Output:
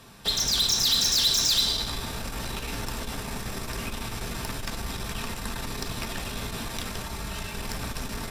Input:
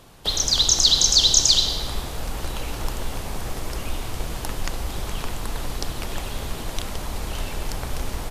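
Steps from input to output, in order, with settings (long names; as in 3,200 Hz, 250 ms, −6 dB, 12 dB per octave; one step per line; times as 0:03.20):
tube saturation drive 22 dB, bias 0.3
0:07.02–0:07.55: notch comb filter 250 Hz
convolution reverb RT60 0.30 s, pre-delay 3 ms, DRR 3 dB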